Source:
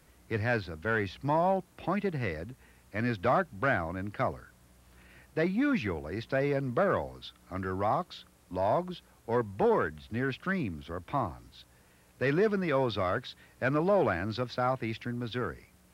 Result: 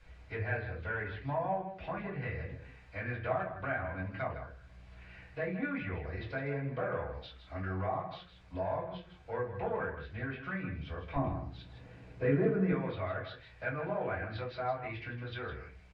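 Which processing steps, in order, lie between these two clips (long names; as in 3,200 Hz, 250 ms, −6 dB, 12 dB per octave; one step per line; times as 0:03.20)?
treble cut that deepens with the level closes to 2,500 Hz, closed at −27.5 dBFS
parametric band 230 Hz −8 dB 2.7 octaves, from 0:11.16 +6 dB, from 0:12.72 −10 dB
downward compressor 1.5 to 1, threshold −53 dBFS, peak gain reduction 12.5 dB
high-frequency loss of the air 110 metres
single-tap delay 159 ms −10.5 dB
convolution reverb RT60 0.30 s, pre-delay 3 ms, DRR −7.5 dB
level −5.5 dB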